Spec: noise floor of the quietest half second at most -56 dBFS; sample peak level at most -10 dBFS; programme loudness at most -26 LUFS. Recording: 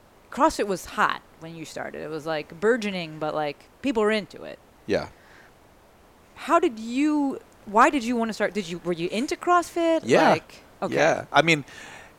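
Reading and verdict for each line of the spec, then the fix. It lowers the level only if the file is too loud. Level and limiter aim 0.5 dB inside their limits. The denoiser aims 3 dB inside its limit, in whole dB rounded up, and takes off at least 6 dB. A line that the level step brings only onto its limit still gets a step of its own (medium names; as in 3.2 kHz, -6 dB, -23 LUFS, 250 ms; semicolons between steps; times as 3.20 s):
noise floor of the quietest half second -54 dBFS: fail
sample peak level -4.5 dBFS: fail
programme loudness -24.0 LUFS: fail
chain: trim -2.5 dB; peak limiter -10.5 dBFS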